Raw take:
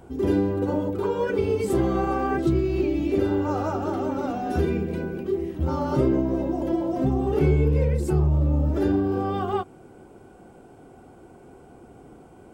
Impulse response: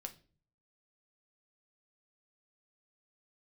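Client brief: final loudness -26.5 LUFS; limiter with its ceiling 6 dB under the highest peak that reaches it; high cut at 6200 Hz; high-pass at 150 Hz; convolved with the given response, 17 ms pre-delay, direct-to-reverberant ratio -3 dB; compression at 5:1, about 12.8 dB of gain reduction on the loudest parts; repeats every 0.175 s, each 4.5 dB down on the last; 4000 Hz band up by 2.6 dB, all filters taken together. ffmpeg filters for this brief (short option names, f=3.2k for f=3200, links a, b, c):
-filter_complex "[0:a]highpass=150,lowpass=6.2k,equalizer=f=4k:t=o:g=4,acompressor=threshold=-33dB:ratio=5,alimiter=level_in=4.5dB:limit=-24dB:level=0:latency=1,volume=-4.5dB,aecho=1:1:175|350|525|700|875|1050|1225|1400|1575:0.596|0.357|0.214|0.129|0.0772|0.0463|0.0278|0.0167|0.01,asplit=2[a][b];[1:a]atrim=start_sample=2205,adelay=17[c];[b][c]afir=irnorm=-1:irlink=0,volume=6.5dB[d];[a][d]amix=inputs=2:normalize=0,volume=5dB"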